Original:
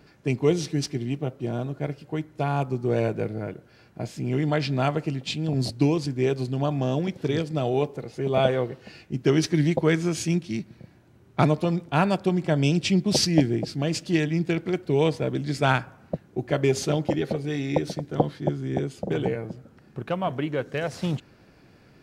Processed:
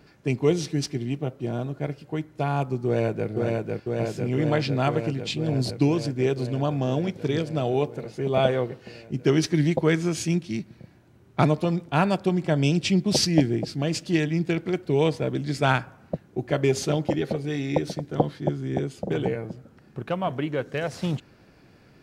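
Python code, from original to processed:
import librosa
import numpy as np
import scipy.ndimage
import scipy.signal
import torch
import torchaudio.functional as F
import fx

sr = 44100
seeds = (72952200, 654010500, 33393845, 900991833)

y = fx.echo_throw(x, sr, start_s=2.86, length_s=0.43, ms=500, feedback_pct=80, wet_db=-2.0)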